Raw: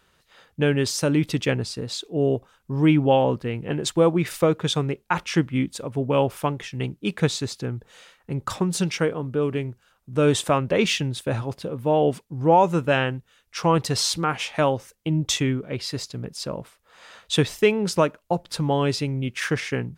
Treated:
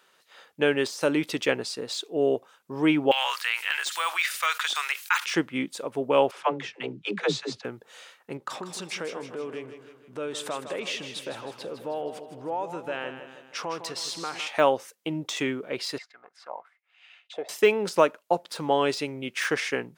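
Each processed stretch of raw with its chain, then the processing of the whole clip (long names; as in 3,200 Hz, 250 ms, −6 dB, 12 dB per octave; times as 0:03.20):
0:03.11–0:05.26: high-pass filter 1,300 Hz 24 dB per octave + high-shelf EQ 2,400 Hz +9 dB + envelope flattener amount 50%
0:06.31–0:07.65: high-frequency loss of the air 110 metres + all-pass dispersion lows, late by 96 ms, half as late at 320 Hz
0:08.37–0:14.47: high-shelf EQ 6,400 Hz −7.5 dB + downward compressor 4 to 1, threshold −30 dBFS + repeating echo 158 ms, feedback 52%, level −10 dB
0:15.98–0:17.49: leveller curve on the samples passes 1 + envelope filter 610–3,000 Hz, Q 6.2, down, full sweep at −19.5 dBFS + hollow resonant body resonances 730/2,100 Hz, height 12 dB
whole clip: de-essing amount 70%; high-pass filter 380 Hz 12 dB per octave; level +1.5 dB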